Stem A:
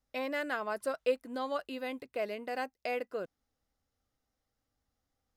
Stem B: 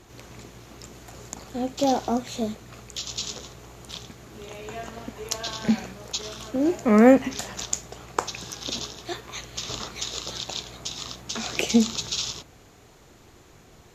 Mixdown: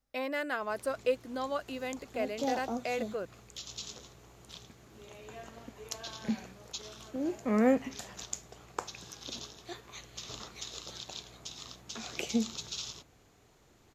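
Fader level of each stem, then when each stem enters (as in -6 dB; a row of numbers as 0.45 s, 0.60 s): +0.5 dB, -11.0 dB; 0.00 s, 0.60 s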